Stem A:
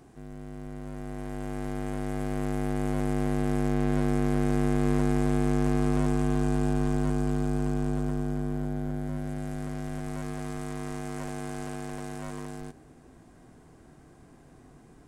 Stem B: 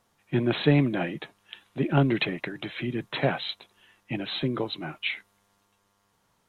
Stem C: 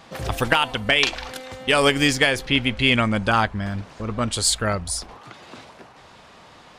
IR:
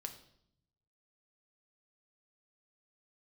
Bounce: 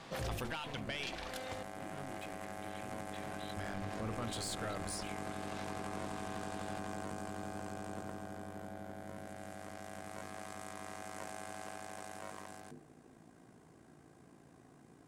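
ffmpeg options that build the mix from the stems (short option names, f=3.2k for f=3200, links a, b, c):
-filter_complex "[0:a]highpass=110,tremolo=f=56:d=0.571,volume=-2.5dB[a];[1:a]asoftclip=type=tanh:threshold=-31dB,volume=-15dB,asplit=2[b][c];[2:a]alimiter=limit=-12dB:level=0:latency=1:release=35,aeval=exprs='(tanh(7.08*val(0)+0.4)-tanh(0.4))/7.08':c=same,volume=-3.5dB,asplit=3[d][e][f];[d]atrim=end=1.63,asetpts=PTS-STARTPTS,afade=t=out:st=1.626:d=0.004:c=hsin[g];[e]atrim=start=1.63:end=3.57,asetpts=PTS-STARTPTS,volume=0[h];[f]atrim=start=3.57,asetpts=PTS-STARTPTS,afade=t=in:d=0.004:c=hsin[i];[g][h][i]concat=n=3:v=0:a=1[j];[c]apad=whole_len=299428[k];[j][k]sidechaincompress=threshold=-56dB:ratio=8:attack=16:release=738[l];[a][b][l]amix=inputs=3:normalize=0,bandreject=f=50:t=h:w=6,bandreject=f=100:t=h:w=6,bandreject=f=150:t=h:w=6,bandreject=f=200:t=h:w=6,bandreject=f=250:t=h:w=6,bandreject=f=300:t=h:w=6,bandreject=f=350:t=h:w=6,bandreject=f=400:t=h:w=6,bandreject=f=450:t=h:w=6,alimiter=level_in=6.5dB:limit=-24dB:level=0:latency=1:release=13,volume=-6.5dB"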